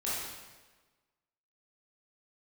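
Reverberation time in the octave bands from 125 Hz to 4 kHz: 1.3, 1.3, 1.3, 1.3, 1.2, 1.1 seconds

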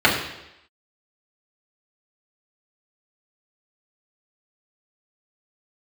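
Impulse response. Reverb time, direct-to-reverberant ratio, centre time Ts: 0.85 s, −6.0 dB, 36 ms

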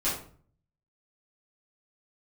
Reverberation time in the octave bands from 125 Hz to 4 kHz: 0.85, 0.60, 0.50, 0.45, 0.40, 0.30 seconds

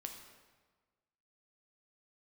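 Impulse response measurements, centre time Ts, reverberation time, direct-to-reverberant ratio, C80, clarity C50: 34 ms, 1.4 s, 3.0 dB, 7.5 dB, 6.0 dB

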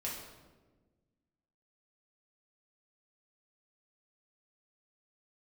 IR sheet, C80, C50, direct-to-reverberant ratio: 5.5 dB, 2.5 dB, −5.0 dB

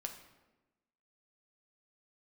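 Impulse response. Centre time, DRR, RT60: 19 ms, 3.5 dB, 1.1 s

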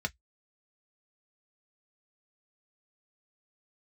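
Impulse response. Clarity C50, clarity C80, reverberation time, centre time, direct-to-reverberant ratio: 35.0 dB, 52.5 dB, non-exponential decay, 3 ms, 4.0 dB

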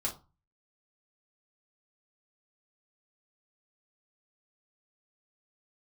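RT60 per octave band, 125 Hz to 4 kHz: 0.50, 0.35, 0.25, 0.35, 0.20, 0.20 seconds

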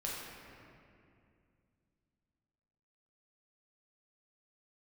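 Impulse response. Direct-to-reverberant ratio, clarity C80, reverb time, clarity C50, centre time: −5.0 dB, 0.5 dB, 2.4 s, −1.0 dB, 130 ms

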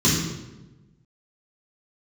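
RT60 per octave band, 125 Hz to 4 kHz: 1.5, 1.4, 1.2, 0.95, 0.85, 0.75 seconds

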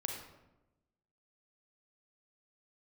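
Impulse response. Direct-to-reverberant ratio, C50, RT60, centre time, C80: 1.5 dB, 3.0 dB, 1.0 s, 41 ms, 6.0 dB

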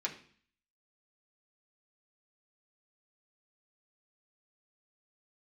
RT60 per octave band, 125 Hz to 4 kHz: 0.60, 0.65, 0.50, 0.50, 0.55, 0.55 seconds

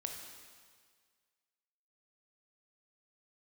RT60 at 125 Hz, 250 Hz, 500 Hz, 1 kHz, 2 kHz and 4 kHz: 1.7, 1.7, 1.7, 1.8, 1.7, 1.7 seconds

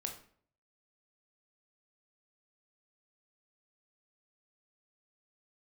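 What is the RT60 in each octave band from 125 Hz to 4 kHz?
0.75, 0.60, 0.60, 0.50, 0.45, 0.40 seconds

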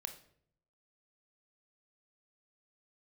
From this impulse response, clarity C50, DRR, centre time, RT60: 11.0 dB, 6.5 dB, 11 ms, 0.65 s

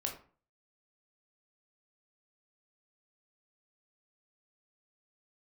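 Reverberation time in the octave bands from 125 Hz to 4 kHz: 0.50, 0.45, 0.40, 0.40, 0.35, 0.25 seconds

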